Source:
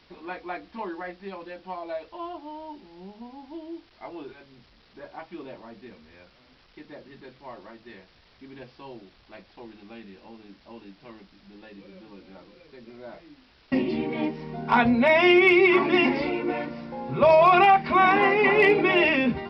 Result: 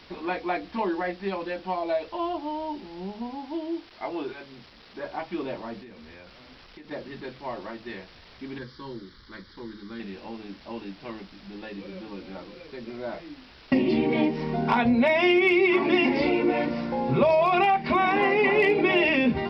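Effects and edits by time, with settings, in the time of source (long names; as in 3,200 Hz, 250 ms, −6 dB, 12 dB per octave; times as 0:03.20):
0:03.35–0:05.06: low-shelf EQ 130 Hz −7.5 dB
0:05.82–0:06.91: downward compressor, threshold −50 dBFS
0:08.58–0:10.00: phaser with its sweep stopped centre 2,600 Hz, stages 6
whole clip: mains-hum notches 50/100/150 Hz; downward compressor 4 to 1, threshold −27 dBFS; dynamic equaliser 1,300 Hz, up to −5 dB, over −44 dBFS, Q 1.5; level +8 dB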